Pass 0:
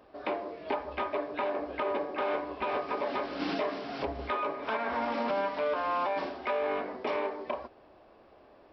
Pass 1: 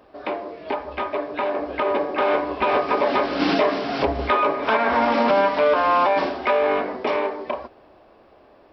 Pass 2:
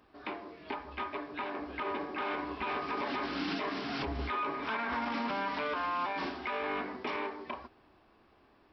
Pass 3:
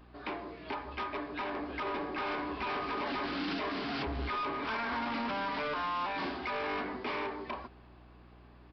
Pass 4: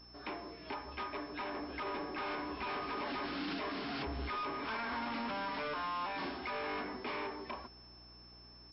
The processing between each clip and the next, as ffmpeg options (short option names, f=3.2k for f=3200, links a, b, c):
-af "dynaudnorm=f=230:g=17:m=7dB,volume=5.5dB"
-af "equalizer=f=570:t=o:w=0.84:g=-13,alimiter=limit=-19dB:level=0:latency=1:release=44,volume=-7dB"
-af "aeval=exprs='val(0)+0.00112*(sin(2*PI*60*n/s)+sin(2*PI*2*60*n/s)/2+sin(2*PI*3*60*n/s)/3+sin(2*PI*4*60*n/s)/4+sin(2*PI*5*60*n/s)/5)':c=same,aresample=11025,asoftclip=type=tanh:threshold=-34dB,aresample=44100,volume=3.5dB"
-af "aeval=exprs='val(0)+0.00251*sin(2*PI*5300*n/s)':c=same,volume=-4dB"